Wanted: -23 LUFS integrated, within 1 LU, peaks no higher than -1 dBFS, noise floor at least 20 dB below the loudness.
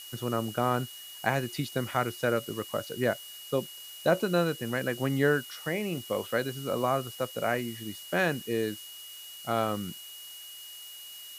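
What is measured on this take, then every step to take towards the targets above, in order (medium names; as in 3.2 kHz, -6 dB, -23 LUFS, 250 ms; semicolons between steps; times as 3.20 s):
steady tone 2.9 kHz; tone level -45 dBFS; noise floor -45 dBFS; noise floor target -51 dBFS; loudness -30.5 LUFS; peak level -9.0 dBFS; loudness target -23.0 LUFS
-> band-stop 2.9 kHz, Q 30; noise reduction 6 dB, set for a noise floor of -45 dBFS; trim +7.5 dB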